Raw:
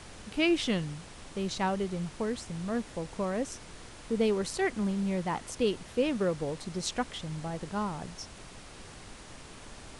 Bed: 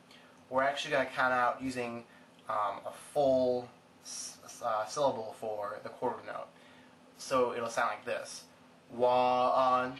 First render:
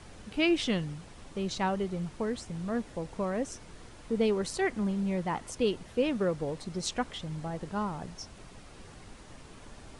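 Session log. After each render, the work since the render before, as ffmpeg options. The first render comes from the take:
-af "afftdn=nr=6:nf=-49"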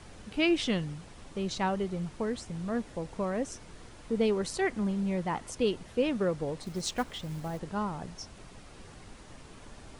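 -filter_complex "[0:a]asettb=1/sr,asplit=3[a][b][c];[a]atrim=end=6.634[d];[b]atrim=start=6.63:end=7.59,asetpts=PTS-STARTPTS,afade=t=in:d=0.004:c=qsin,afade=t=out:st=0.956:d=0.004:c=qsin,acrusher=bits=5:mode=log:mix=0:aa=0.000001[e];[c]atrim=start=7.586[f];[d][e]acrossfade=d=0.004:c1=hsin:c2=qsin[g];[g][f]acrossfade=d=0.004:c1=qsin:c2=hsin"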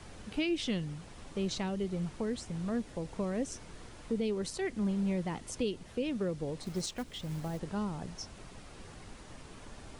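-filter_complex "[0:a]acrossover=split=490|2200[a][b][c];[b]acompressor=threshold=-43dB:ratio=6[d];[a][d][c]amix=inputs=3:normalize=0,alimiter=limit=-23.5dB:level=0:latency=1:release=483"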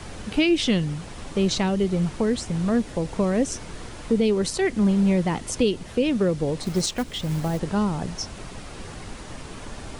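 -af "volume=12dB"

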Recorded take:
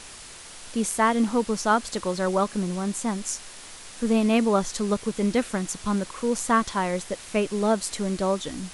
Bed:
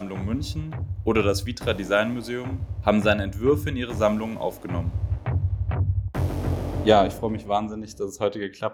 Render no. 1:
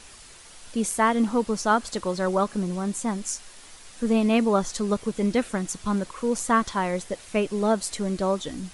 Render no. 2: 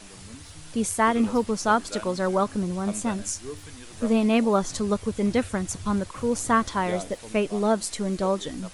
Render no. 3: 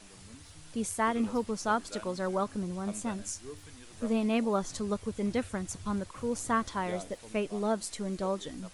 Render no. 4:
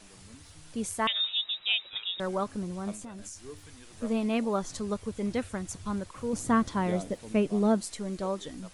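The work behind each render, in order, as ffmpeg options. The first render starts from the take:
-af "afftdn=nr=6:nf=-43"
-filter_complex "[1:a]volume=-17.5dB[a];[0:a][a]amix=inputs=2:normalize=0"
-af "volume=-7.5dB"
-filter_complex "[0:a]asettb=1/sr,asplit=3[a][b][c];[a]atrim=end=1.074[d];[b]atrim=start=1.07:end=2.2,asetpts=PTS-STARTPTS,afade=t=in:d=0.004:c=qsin,afade=t=out:st=1.126:d=0.004:c=qsin,lowpass=f=3.3k:t=q:w=0.5098,lowpass=f=3.3k:t=q:w=0.6013,lowpass=f=3.3k:t=q:w=0.9,lowpass=f=3.3k:t=q:w=2.563,afreqshift=-3900[e];[c]atrim=start=2.196[f];[d][e]acrossfade=d=0.004:c1=hsin:c2=qsin[g];[g][f]acrossfade=d=0.004:c1=qsin:c2=hsin,asettb=1/sr,asplit=3[h][i][j];[h]atrim=end=2.944[k];[i]atrim=start=2.94:end=3.49,asetpts=PTS-STARTPTS,afade=t=in:d=0.004:c=qsin,afade=t=out:st=0.546:d=0.004:c=qsin,acompressor=threshold=-38dB:ratio=12:attack=3.2:release=140:knee=1:detection=peak[l];[j]atrim=start=3.486[m];[k][l]acrossfade=d=0.004:c1=hsin:c2=qsin[n];[n][m]acrossfade=d=0.004:c1=qsin:c2=hsin,asettb=1/sr,asplit=3[o][p][q];[o]atrim=end=6.334[r];[p]atrim=start=6.33:end=7.81,asetpts=PTS-STARTPTS,afade=t=in:d=0.004:c=qsin,afade=t=out:st=1.476:d=0.004:c=qsin,equalizer=f=180:w=0.53:g=9[s];[q]atrim=start=7.806[t];[r][s]acrossfade=d=0.004:c1=hsin:c2=qsin[u];[u][t]acrossfade=d=0.004:c1=qsin:c2=hsin"

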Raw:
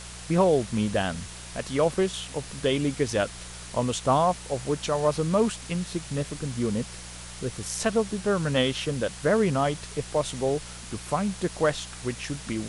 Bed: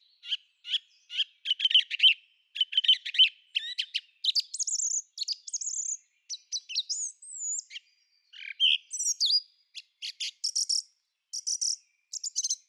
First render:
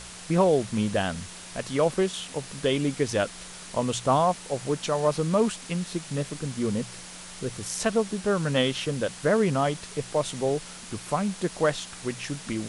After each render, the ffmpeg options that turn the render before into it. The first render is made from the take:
-af "bandreject=f=60:t=h:w=4,bandreject=f=120:t=h:w=4"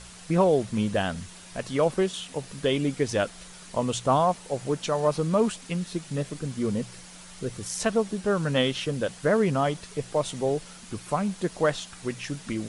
-af "afftdn=nr=6:nf=-43"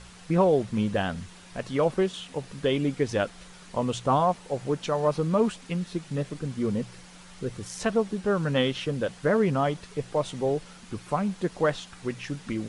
-af "lowpass=f=3.6k:p=1,bandreject=f=640:w=17"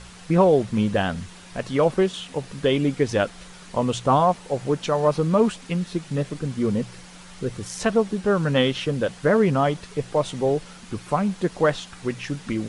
-af "volume=4.5dB"

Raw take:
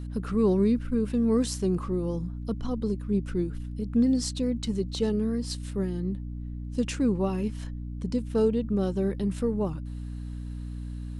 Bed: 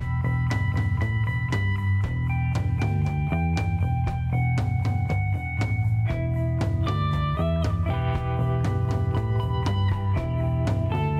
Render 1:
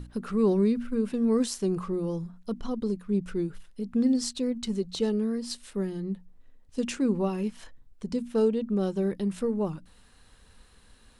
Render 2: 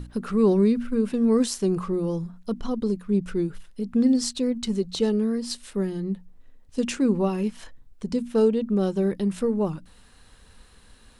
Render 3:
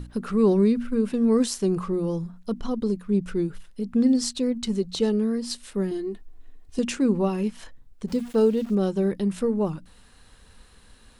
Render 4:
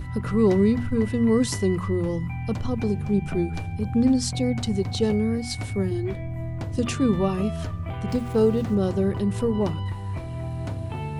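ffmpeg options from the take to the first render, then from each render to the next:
-af "bandreject=f=60:t=h:w=6,bandreject=f=120:t=h:w=6,bandreject=f=180:t=h:w=6,bandreject=f=240:t=h:w=6,bandreject=f=300:t=h:w=6"
-af "volume=4dB"
-filter_complex "[0:a]asettb=1/sr,asplit=3[a][b][c];[a]atrim=end=5.914[d];[b]atrim=start=5.91:end=6.79,asetpts=PTS-STARTPTS,afade=t=in:d=0.004:c=qsin,afade=t=out:st=0.876:d=0.004:c=qsin,aecho=1:1:2.8:0.91,atrim=end_sample=38808[e];[c]atrim=start=6.786[f];[d][e]acrossfade=d=0.004:c1=hsin:c2=qsin[g];[g][f]acrossfade=d=0.004:c1=qsin:c2=hsin,asplit=3[h][i][j];[h]afade=t=out:st=8.07:d=0.02[k];[i]aeval=exprs='val(0)*gte(abs(val(0)),0.00891)':c=same,afade=t=in:st=8.07:d=0.02,afade=t=out:st=8.74:d=0.02[l];[j]afade=t=in:st=8.74:d=0.02[m];[k][l][m]amix=inputs=3:normalize=0"
-filter_complex "[1:a]volume=-6.5dB[a];[0:a][a]amix=inputs=2:normalize=0"

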